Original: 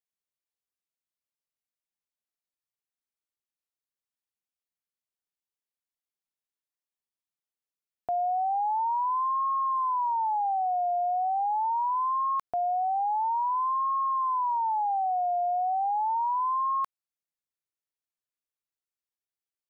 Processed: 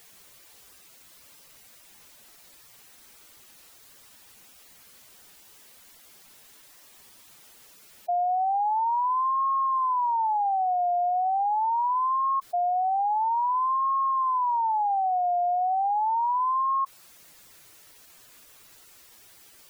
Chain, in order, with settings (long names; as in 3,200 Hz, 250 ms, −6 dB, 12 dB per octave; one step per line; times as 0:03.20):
converter with a step at zero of −44 dBFS
gate on every frequency bin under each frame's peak −10 dB strong
level +2 dB